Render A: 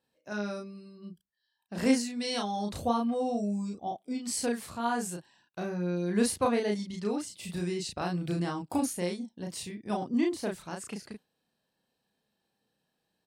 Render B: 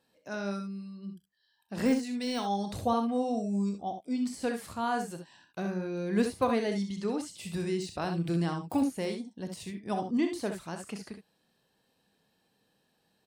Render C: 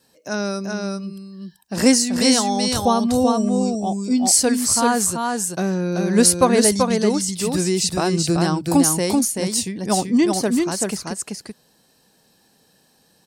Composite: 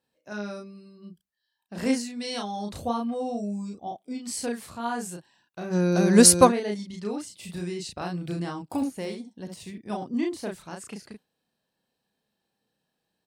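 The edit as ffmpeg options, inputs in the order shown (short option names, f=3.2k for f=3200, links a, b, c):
-filter_complex "[0:a]asplit=3[a][b][c];[a]atrim=end=5.76[d];[2:a]atrim=start=5.7:end=6.53[e];[b]atrim=start=6.47:end=8.772[f];[1:a]atrim=start=8.768:end=9.782[g];[c]atrim=start=9.778[h];[d][e]acrossfade=d=0.06:c1=tri:c2=tri[i];[i][f]acrossfade=d=0.06:c1=tri:c2=tri[j];[j][g]acrossfade=d=0.004:c1=hsin:c2=hsin[k];[k][h]acrossfade=d=0.004:c1=hsin:c2=hsin"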